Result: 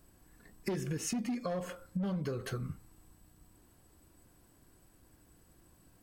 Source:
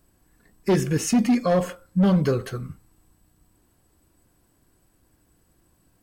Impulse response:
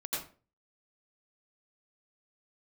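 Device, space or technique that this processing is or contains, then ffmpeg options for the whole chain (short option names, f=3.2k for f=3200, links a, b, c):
serial compression, leveller first: -af "acompressor=threshold=-25dB:ratio=2,acompressor=threshold=-34dB:ratio=5"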